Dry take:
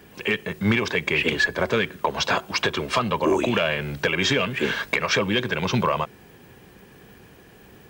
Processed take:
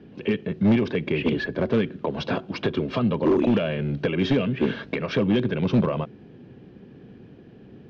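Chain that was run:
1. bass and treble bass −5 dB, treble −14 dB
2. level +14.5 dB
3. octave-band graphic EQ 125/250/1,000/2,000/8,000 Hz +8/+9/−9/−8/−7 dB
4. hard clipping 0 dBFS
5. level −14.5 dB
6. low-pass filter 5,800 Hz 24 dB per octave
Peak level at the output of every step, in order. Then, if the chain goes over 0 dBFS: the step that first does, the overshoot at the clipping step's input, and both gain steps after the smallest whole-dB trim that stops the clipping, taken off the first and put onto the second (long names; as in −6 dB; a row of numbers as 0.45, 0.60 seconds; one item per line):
−10.5, +4.0, +8.0, 0.0, −14.5, −14.0 dBFS
step 2, 8.0 dB
step 2 +6.5 dB, step 5 −6.5 dB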